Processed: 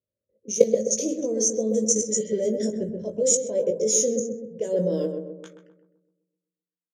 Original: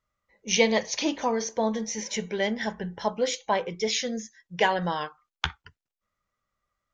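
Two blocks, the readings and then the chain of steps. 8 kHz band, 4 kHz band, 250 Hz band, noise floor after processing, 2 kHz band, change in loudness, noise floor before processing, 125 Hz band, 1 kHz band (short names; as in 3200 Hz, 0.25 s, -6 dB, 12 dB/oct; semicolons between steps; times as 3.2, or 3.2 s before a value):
+10.5 dB, -7.5 dB, +3.0 dB, under -85 dBFS, under -20 dB, +4.0 dB, under -85 dBFS, +2.0 dB, under -20 dB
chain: level quantiser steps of 17 dB; spectral repair 2.14–2.37, 1800–5000 Hz after; doubler 19 ms -7 dB; low-pass opened by the level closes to 850 Hz, open at -29.5 dBFS; AGC gain up to 9 dB; EQ curve 130 Hz 0 dB, 560 Hz +9 dB, 820 Hz -29 dB, 2500 Hz -24 dB, 4600 Hz -19 dB, 7700 Hz +15 dB; high-pass sweep 90 Hz -> 3700 Hz, 4.61–5.89; tilt +2.5 dB/oct; on a send: darkening echo 0.129 s, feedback 56%, low-pass 910 Hz, level -4 dB; on the sum: gain -1.5 dB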